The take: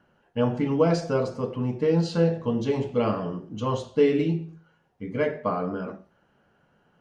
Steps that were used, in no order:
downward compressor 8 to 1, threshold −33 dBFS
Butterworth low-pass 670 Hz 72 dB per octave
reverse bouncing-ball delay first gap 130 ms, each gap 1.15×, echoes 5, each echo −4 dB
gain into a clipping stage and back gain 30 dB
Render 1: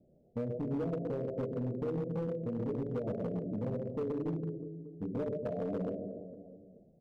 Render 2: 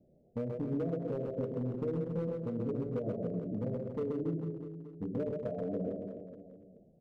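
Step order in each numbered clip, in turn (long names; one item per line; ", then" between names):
Butterworth low-pass, then downward compressor, then reverse bouncing-ball delay, then gain into a clipping stage and back
downward compressor, then Butterworth low-pass, then gain into a clipping stage and back, then reverse bouncing-ball delay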